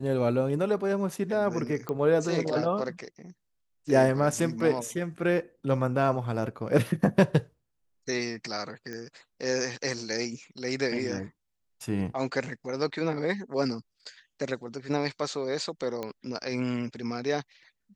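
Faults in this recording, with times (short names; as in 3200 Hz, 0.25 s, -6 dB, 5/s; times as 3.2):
1.89 pop -19 dBFS
8.93 pop -25 dBFS
16.03 pop -20 dBFS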